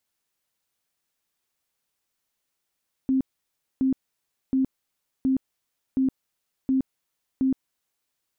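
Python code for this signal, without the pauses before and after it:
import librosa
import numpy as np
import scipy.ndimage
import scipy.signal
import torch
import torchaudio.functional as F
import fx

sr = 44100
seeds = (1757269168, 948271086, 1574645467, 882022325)

y = fx.tone_burst(sr, hz=264.0, cycles=31, every_s=0.72, bursts=7, level_db=-18.5)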